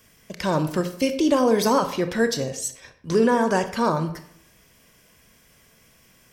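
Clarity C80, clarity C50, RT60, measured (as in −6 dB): 14.0 dB, 11.0 dB, 0.65 s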